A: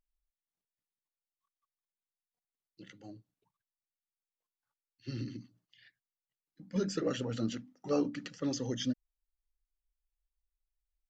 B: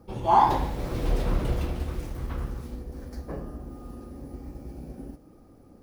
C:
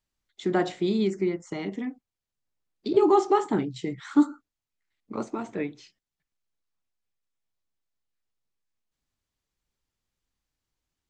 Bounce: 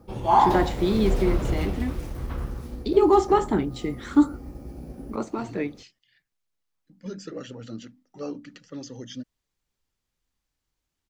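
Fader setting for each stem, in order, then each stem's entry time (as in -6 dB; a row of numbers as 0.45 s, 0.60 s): -3.5 dB, +1.0 dB, +2.0 dB; 0.30 s, 0.00 s, 0.00 s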